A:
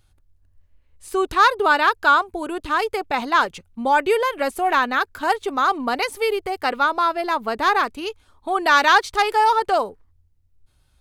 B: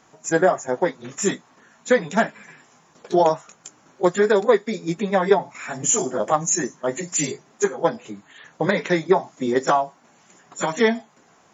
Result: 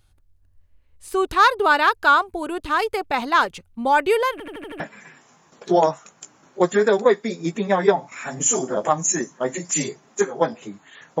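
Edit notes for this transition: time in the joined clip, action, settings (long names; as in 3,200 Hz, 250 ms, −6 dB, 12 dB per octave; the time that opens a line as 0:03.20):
A
0:04.32: stutter in place 0.08 s, 6 plays
0:04.80: continue with B from 0:02.23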